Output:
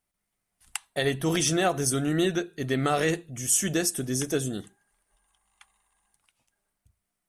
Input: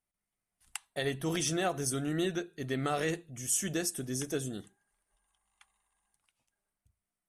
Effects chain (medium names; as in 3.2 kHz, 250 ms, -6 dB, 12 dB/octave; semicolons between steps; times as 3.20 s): short-mantissa float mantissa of 8-bit; trim +7 dB